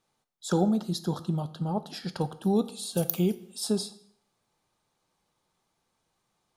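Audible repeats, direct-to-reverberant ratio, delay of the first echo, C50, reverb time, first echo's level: no echo, 11.5 dB, no echo, 16.0 dB, 0.60 s, no echo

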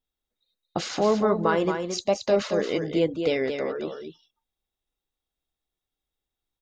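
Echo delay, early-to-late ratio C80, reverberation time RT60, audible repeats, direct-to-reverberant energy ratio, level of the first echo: 223 ms, no reverb, no reverb, 1, no reverb, -6.5 dB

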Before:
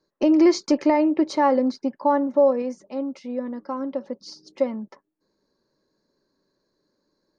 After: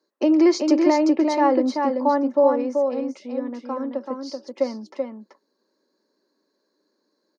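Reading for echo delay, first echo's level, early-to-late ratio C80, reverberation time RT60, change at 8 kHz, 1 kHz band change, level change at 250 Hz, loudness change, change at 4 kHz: 383 ms, -4.5 dB, no reverb, no reverb, no reading, +1.5 dB, +1.5 dB, +1.0 dB, +1.5 dB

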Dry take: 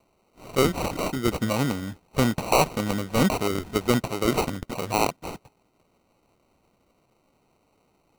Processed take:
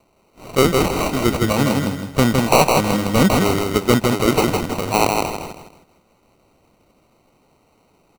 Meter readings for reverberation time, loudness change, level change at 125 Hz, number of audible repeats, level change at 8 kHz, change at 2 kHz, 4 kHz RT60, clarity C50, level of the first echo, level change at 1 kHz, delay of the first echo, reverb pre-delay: no reverb, +7.5 dB, +8.0 dB, 4, +8.0 dB, +8.0 dB, no reverb, no reverb, -3.5 dB, +8.0 dB, 160 ms, no reverb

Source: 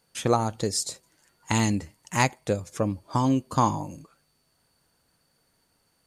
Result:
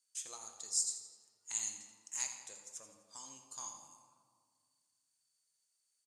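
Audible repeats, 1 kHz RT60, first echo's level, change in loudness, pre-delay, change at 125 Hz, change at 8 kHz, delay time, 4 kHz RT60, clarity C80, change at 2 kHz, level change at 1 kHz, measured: 2, 1.7 s, -11.5 dB, -13.5 dB, 6 ms, under -40 dB, -3.0 dB, 84 ms, 1.1 s, 6.5 dB, -22.0 dB, -28.5 dB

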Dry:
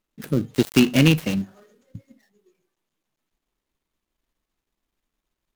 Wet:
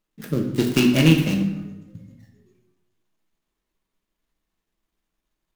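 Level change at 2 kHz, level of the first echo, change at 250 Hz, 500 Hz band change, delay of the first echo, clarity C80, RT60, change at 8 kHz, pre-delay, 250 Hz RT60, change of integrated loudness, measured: 0.0 dB, no echo, +1.0 dB, 0.0 dB, no echo, 8.5 dB, 0.90 s, -0.5 dB, 5 ms, 1.3 s, +0.5 dB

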